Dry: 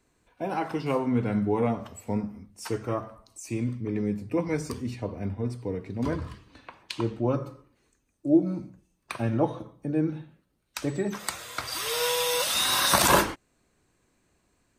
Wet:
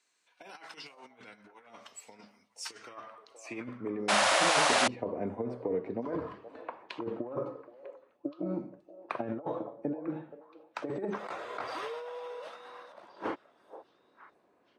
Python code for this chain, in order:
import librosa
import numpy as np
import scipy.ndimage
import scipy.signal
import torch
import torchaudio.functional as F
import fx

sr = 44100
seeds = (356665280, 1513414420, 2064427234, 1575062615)

p1 = fx.highpass(x, sr, hz=240.0, slope=6)
p2 = fx.over_compress(p1, sr, threshold_db=-33.0, ratio=-0.5)
p3 = fx.high_shelf(p2, sr, hz=5100.0, db=-11.5)
p4 = p3 + fx.echo_stepped(p3, sr, ms=474, hz=590.0, octaves=1.4, feedback_pct=70, wet_db=-12.0, dry=0)
p5 = fx.spec_paint(p4, sr, seeds[0], shape='noise', start_s=4.08, length_s=0.8, low_hz=520.0, high_hz=11000.0, level_db=-15.0)
p6 = fx.dynamic_eq(p5, sr, hz=810.0, q=0.76, threshold_db=-36.0, ratio=4.0, max_db=-4)
p7 = fx.filter_sweep_bandpass(p6, sr, from_hz=5800.0, to_hz=590.0, start_s=2.69, end_s=4.08, q=0.95)
y = p7 * librosa.db_to_amplitude(3.5)